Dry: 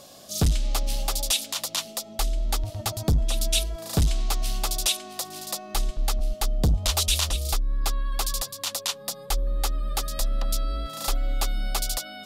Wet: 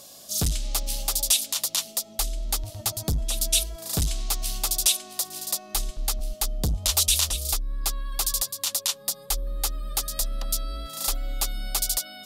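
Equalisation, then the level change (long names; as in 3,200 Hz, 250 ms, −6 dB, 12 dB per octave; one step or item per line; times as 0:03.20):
high-shelf EQ 4,500 Hz +12 dB
−4.5 dB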